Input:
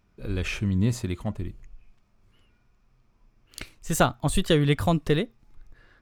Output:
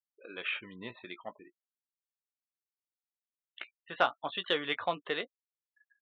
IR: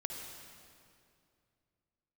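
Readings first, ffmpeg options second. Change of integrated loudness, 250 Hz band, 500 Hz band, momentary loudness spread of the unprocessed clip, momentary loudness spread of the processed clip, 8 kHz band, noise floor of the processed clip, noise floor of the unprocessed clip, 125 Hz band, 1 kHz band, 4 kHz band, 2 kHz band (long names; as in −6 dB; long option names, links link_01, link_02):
−9.0 dB, −19.5 dB, −9.5 dB, 16 LU, 17 LU, below −35 dB, below −85 dBFS, −66 dBFS, −30.0 dB, −4.5 dB, −3.5 dB, −2.0 dB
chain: -filter_complex "[0:a]highpass=700,afftfilt=real='re*gte(hypot(re,im),0.00794)':imag='im*gte(hypot(re,im),0.00794)':win_size=1024:overlap=0.75,asplit=2[link_01][link_02];[link_02]adelay=17,volume=-10.5dB[link_03];[link_01][link_03]amix=inputs=2:normalize=0,aresample=8000,aresample=44100,acontrast=43,volume=-8dB"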